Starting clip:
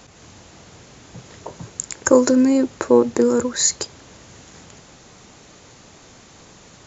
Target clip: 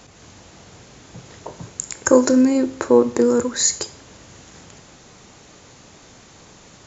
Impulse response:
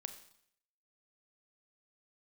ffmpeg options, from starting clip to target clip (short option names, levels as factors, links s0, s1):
-filter_complex "[0:a]asplit=2[s0][s1];[1:a]atrim=start_sample=2205,asetrate=61740,aresample=44100[s2];[s1][s2]afir=irnorm=-1:irlink=0,volume=3.16[s3];[s0][s3]amix=inputs=2:normalize=0,volume=0.398"